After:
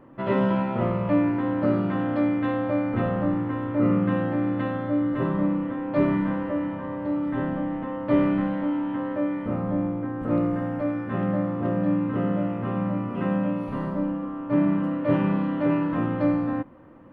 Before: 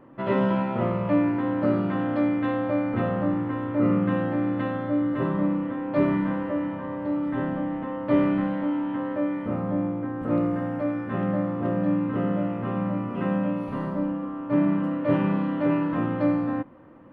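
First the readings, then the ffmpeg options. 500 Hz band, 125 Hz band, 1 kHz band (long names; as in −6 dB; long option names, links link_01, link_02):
0.0 dB, +1.0 dB, 0.0 dB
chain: -af "lowshelf=frequency=66:gain=6.5"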